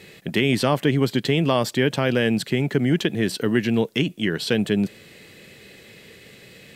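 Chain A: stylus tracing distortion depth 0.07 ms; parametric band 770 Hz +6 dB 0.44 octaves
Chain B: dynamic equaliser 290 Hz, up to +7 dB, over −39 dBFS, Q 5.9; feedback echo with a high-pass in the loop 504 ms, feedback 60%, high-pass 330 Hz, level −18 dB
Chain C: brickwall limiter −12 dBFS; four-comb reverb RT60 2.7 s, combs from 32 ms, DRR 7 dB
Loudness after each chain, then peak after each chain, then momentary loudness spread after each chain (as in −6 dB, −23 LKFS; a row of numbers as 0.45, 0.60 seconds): −21.5, −20.5, −23.0 LKFS; −5.5, −5.5, −9.5 dBFS; 4, 5, 14 LU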